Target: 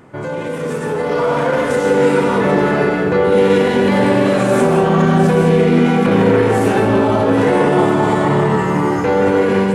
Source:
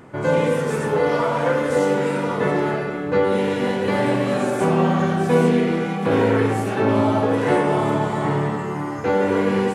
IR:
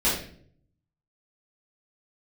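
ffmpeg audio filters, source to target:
-filter_complex "[0:a]acontrast=34,alimiter=limit=-12dB:level=0:latency=1,dynaudnorm=framelen=800:gausssize=3:maxgain=11.5dB,asplit=2[link_01][link_02];[1:a]atrim=start_sample=2205,adelay=144[link_03];[link_02][link_03]afir=irnorm=-1:irlink=0,volume=-19dB[link_04];[link_01][link_04]amix=inputs=2:normalize=0,volume=-5dB"

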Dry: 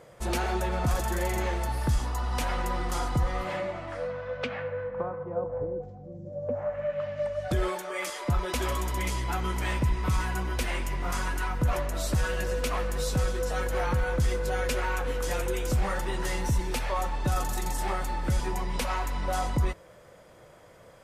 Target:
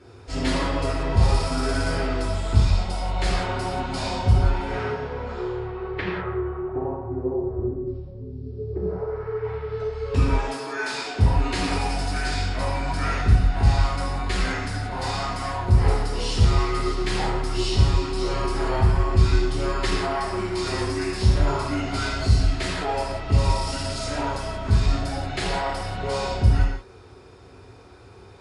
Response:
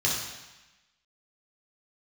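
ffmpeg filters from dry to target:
-filter_complex "[1:a]atrim=start_sample=2205,atrim=end_sample=6615[link_01];[0:a][link_01]afir=irnorm=-1:irlink=0,asetrate=32667,aresample=44100,volume=-5dB"

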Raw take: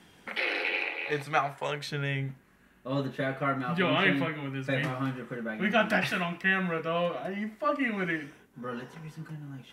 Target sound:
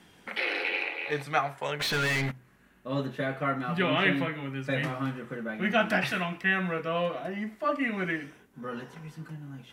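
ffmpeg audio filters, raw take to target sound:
ffmpeg -i in.wav -filter_complex "[0:a]asplit=3[link_01][link_02][link_03];[link_01]afade=type=out:start_time=1.79:duration=0.02[link_04];[link_02]asplit=2[link_05][link_06];[link_06]highpass=frequency=720:poles=1,volume=29dB,asoftclip=type=tanh:threshold=-21dB[link_07];[link_05][link_07]amix=inputs=2:normalize=0,lowpass=frequency=4900:poles=1,volume=-6dB,afade=type=in:start_time=1.79:duration=0.02,afade=type=out:start_time=2.3:duration=0.02[link_08];[link_03]afade=type=in:start_time=2.3:duration=0.02[link_09];[link_04][link_08][link_09]amix=inputs=3:normalize=0,bandreject=frequency=62.81:width_type=h:width=4,bandreject=frequency=125.62:width_type=h:width=4" out.wav

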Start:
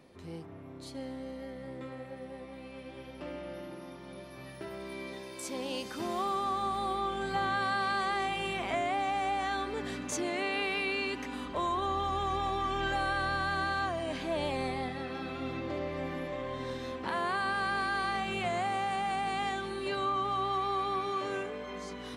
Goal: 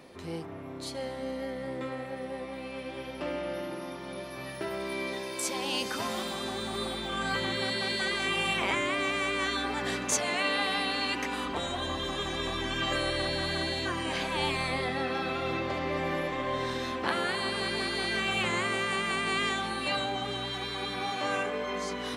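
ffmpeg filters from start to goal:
ffmpeg -i in.wav -af "afftfilt=real='re*lt(hypot(re,im),0.1)':imag='im*lt(hypot(re,im),0.1)':win_size=1024:overlap=0.75,lowshelf=frequency=260:gain=-7,volume=9dB" out.wav

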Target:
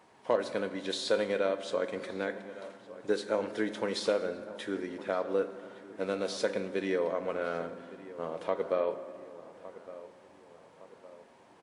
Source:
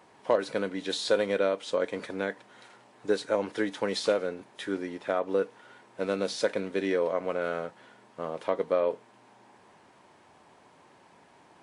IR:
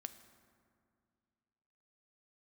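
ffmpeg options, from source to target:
-filter_complex "[0:a]asplit=2[link_01][link_02];[link_02]adelay=1161,lowpass=frequency=2000:poles=1,volume=-16dB,asplit=2[link_03][link_04];[link_04]adelay=1161,lowpass=frequency=2000:poles=1,volume=0.49,asplit=2[link_05][link_06];[link_06]adelay=1161,lowpass=frequency=2000:poles=1,volume=0.49,asplit=2[link_07][link_08];[link_08]adelay=1161,lowpass=frequency=2000:poles=1,volume=0.49[link_09];[link_01][link_03][link_05][link_07][link_09]amix=inputs=5:normalize=0[link_10];[1:a]atrim=start_sample=2205[link_11];[link_10][link_11]afir=irnorm=-1:irlink=0,volume=1.5dB"

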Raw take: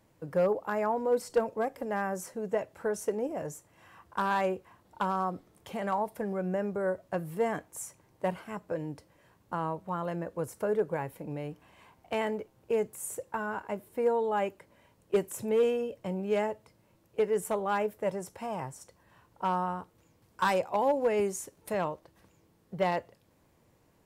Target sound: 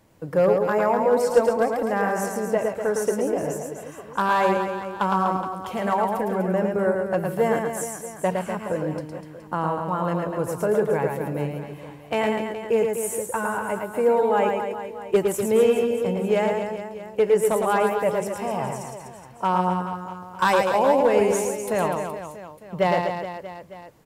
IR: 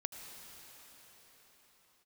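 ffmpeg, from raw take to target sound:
-af "aecho=1:1:110|247.5|419.4|634.2|902.8:0.631|0.398|0.251|0.158|0.1,volume=7dB"

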